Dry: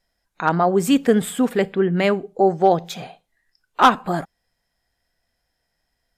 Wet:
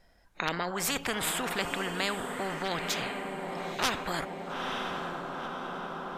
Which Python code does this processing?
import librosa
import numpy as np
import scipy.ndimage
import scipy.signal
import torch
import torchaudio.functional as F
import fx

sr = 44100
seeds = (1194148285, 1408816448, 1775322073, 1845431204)

p1 = fx.high_shelf(x, sr, hz=3000.0, db=-11.0)
p2 = p1 + fx.echo_diffused(p1, sr, ms=918, feedback_pct=41, wet_db=-15.5, dry=0)
p3 = fx.spectral_comp(p2, sr, ratio=4.0)
y = p3 * 10.0 ** (-8.0 / 20.0)